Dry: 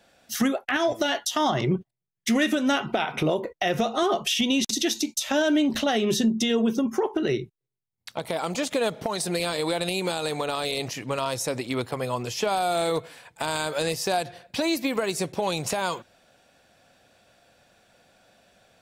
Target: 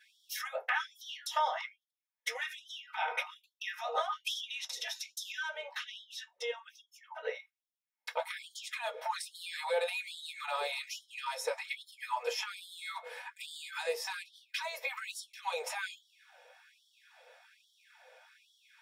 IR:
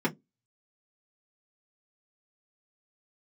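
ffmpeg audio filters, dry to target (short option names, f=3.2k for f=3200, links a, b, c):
-filter_complex "[0:a]asetnsamples=n=441:p=0,asendcmd='5.5 highshelf g -4.5;7.35 highshelf g 4',highshelf=f=6.2k:g=5,acompressor=threshold=-30dB:ratio=16[a];[1:a]atrim=start_sample=2205[b];[a][b]afir=irnorm=-1:irlink=0,afftfilt=real='re*gte(b*sr/1024,430*pow(3100/430,0.5+0.5*sin(2*PI*1.2*pts/sr)))':imag='im*gte(b*sr/1024,430*pow(3100/430,0.5+0.5*sin(2*PI*1.2*pts/sr)))':win_size=1024:overlap=0.75,volume=-5.5dB"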